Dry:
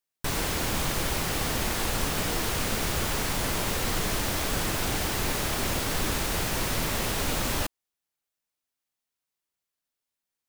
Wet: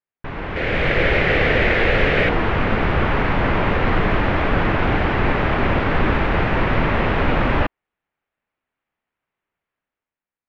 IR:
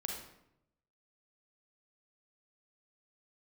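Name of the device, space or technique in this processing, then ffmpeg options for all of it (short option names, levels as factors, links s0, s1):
action camera in a waterproof case: -filter_complex "[0:a]asettb=1/sr,asplit=3[s0][s1][s2];[s0]atrim=end=0.564[s3];[s1]atrim=start=0.56:end=2.29,asetpts=PTS-STARTPTS,afade=t=in:d=0.004:c=qsin,afade=t=out:st=1.726:d=0.004:c=qsin,equalizer=f=250:t=o:w=1:g=-4,equalizer=f=500:t=o:w=1:g=9,equalizer=f=1000:t=o:w=1:g=-9,equalizer=f=2000:t=o:w=1:g=9,equalizer=f=4000:t=o:w=1:g=4,equalizer=f=8000:t=o:w=1:g=7[s4];[s2]atrim=start=2.286[s5];[s3][s4]acrossfade=d=0.004:c1=hsin:c2=qsin[s6];[s6][s5]acrossfade=d=0.004:c1=qsin:c2=hsin,lowpass=f=2400:w=0.5412,lowpass=f=2400:w=1.3066,dynaudnorm=f=130:g=11:m=3.98" -ar 22050 -c:a aac -b:a 96k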